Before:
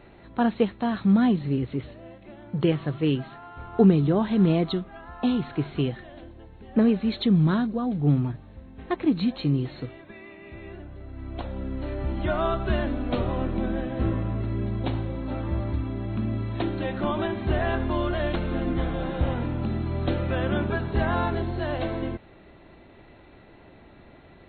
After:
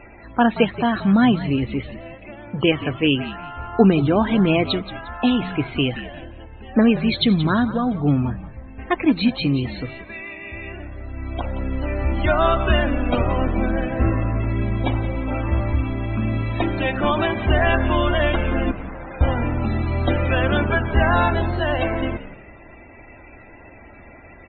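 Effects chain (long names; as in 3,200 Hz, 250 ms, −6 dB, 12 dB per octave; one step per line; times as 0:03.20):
0:18.71–0:19.21: tube saturation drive 39 dB, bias 0.55
spectral peaks only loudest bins 64
graphic EQ with 15 bands 160 Hz −10 dB, 400 Hz −5 dB, 2,500 Hz +9 dB
echo with shifted repeats 177 ms, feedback 31%, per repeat −64 Hz, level −14 dB
level +8.5 dB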